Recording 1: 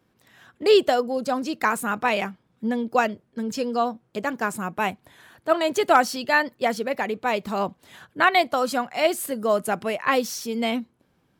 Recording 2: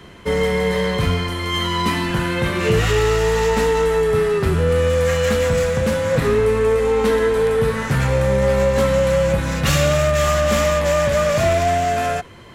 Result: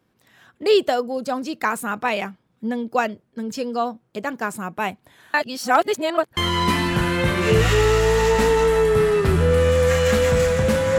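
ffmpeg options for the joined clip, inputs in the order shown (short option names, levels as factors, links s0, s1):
-filter_complex "[0:a]apad=whole_dur=10.98,atrim=end=10.98,asplit=2[s0][s1];[s0]atrim=end=5.342[s2];[s1]atrim=start=5.338:end=6.372,asetpts=PTS-STARTPTS,areverse[s3];[1:a]atrim=start=1.548:end=6.16[s4];[s2][s3]acrossfade=d=0.004:c1=hsin:c2=hsin[s5];[s5][s4]acrossfade=d=0.004:c1=hsin:c2=hsin"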